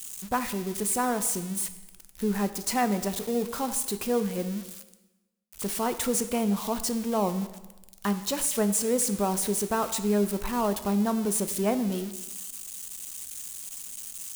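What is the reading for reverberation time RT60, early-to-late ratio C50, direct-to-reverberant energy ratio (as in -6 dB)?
1.1 s, 12.5 dB, 10.0 dB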